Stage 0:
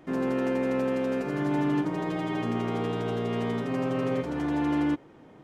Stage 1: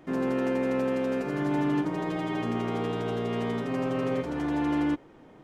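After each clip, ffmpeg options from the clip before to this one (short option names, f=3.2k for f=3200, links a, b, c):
-af "asubboost=boost=3:cutoff=51"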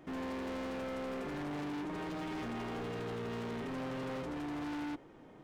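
-af "asoftclip=type=hard:threshold=-34.5dB,volume=-3.5dB"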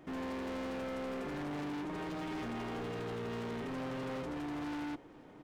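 -af "aecho=1:1:478:0.0708"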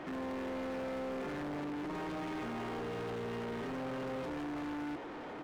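-filter_complex "[0:a]asplit=2[a][b];[b]highpass=f=720:p=1,volume=28dB,asoftclip=type=tanh:threshold=-37dB[c];[a][c]amix=inputs=2:normalize=0,lowpass=f=1.9k:p=1,volume=-6dB,volume=1dB"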